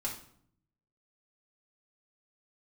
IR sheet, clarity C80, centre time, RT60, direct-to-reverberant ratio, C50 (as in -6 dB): 11.5 dB, 23 ms, 0.60 s, -4.5 dB, 7.0 dB